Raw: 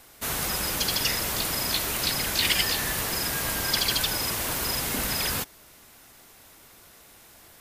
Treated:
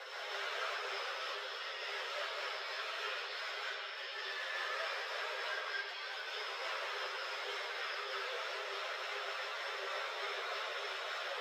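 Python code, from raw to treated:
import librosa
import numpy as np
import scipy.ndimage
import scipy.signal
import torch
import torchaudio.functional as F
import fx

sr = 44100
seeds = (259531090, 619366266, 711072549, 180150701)

y = fx.peak_eq(x, sr, hz=3400.0, db=6.0, octaves=0.68)
y = fx.over_compress(y, sr, threshold_db=-39.0, ratio=-1.0)
y = scipy.signal.sosfilt(scipy.signal.cheby1(6, 6, 380.0, 'highpass', fs=sr, output='sos'), y)
y = y + 10.0 ** (-52.0 / 20.0) * np.sin(2.0 * np.pi * 5300.0 * np.arange(len(y)) / sr)
y = fx.harmonic_tremolo(y, sr, hz=5.0, depth_pct=50, crossover_hz=620.0)
y = fx.stretch_vocoder_free(y, sr, factor=1.5)
y = fx.air_absorb(y, sr, metres=190.0)
y = fx.rev_freeverb(y, sr, rt60_s=1.6, hf_ratio=0.75, predelay_ms=115, drr_db=-5.0)
y = fx.ensemble(y, sr)
y = y * librosa.db_to_amplitude(9.0)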